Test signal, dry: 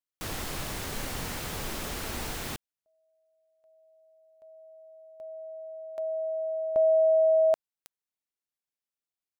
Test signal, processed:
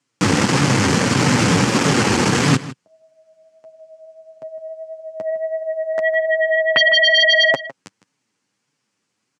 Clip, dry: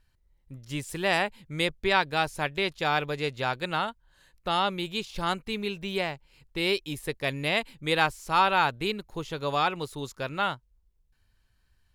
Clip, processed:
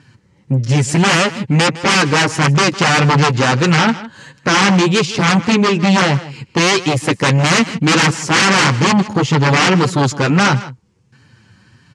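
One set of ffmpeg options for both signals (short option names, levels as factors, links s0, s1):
-filter_complex "[0:a]lowshelf=f=470:g=11,asplit=2[s0][s1];[s1]acompressor=threshold=0.0282:ratio=6:attack=1.6:release=35,volume=0.708[s2];[s0][s2]amix=inputs=2:normalize=0,flanger=delay=6.6:depth=4.7:regen=16:speed=1.6:shape=triangular,aeval=exprs='0.335*sin(PI/2*6.31*val(0)/0.335)':c=same,highpass=f=130:w=0.5412,highpass=f=130:w=1.3066,equalizer=f=400:t=q:w=4:g=-4,equalizer=f=650:t=q:w=4:g=-9,equalizer=f=3700:t=q:w=4:g=-6,lowpass=f=7700:w=0.5412,lowpass=f=7700:w=1.3066,asplit=2[s3][s4];[s4]adelay=157.4,volume=0.158,highshelf=f=4000:g=-3.54[s5];[s3][s5]amix=inputs=2:normalize=0,volume=1.33"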